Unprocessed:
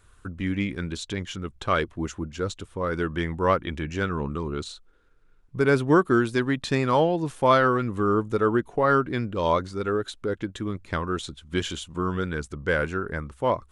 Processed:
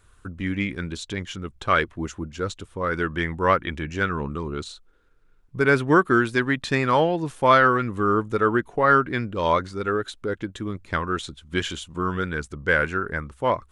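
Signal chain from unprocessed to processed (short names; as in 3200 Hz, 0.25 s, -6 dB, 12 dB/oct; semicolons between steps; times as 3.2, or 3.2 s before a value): dynamic EQ 1800 Hz, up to +7 dB, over -38 dBFS, Q 1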